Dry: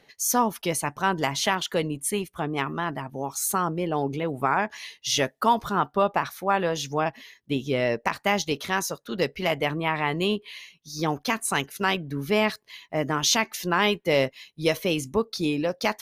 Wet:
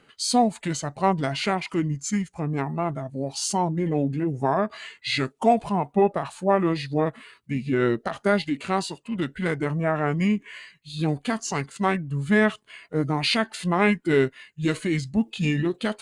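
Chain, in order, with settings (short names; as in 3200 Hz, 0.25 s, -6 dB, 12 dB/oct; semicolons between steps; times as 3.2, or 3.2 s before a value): formant shift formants -6 st; harmonic-percussive split percussive -7 dB; gain +3.5 dB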